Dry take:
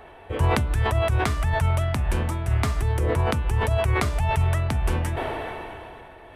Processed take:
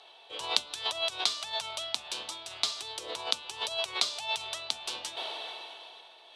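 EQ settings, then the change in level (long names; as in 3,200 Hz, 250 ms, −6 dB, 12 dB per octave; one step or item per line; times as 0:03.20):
band-pass filter 750–5,800 Hz
high shelf with overshoot 2,700 Hz +13 dB, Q 3
−7.0 dB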